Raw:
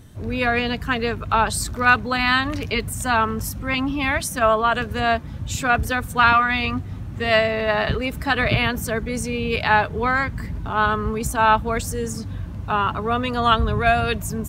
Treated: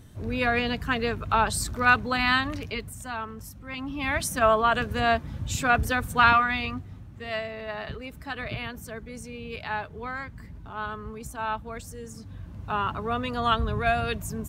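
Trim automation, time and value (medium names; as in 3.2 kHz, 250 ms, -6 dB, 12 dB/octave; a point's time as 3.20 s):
2.34 s -4 dB
3.13 s -14.5 dB
3.68 s -14.5 dB
4.23 s -3 dB
6.29 s -3 dB
7.18 s -14 dB
12.07 s -14 dB
12.77 s -6.5 dB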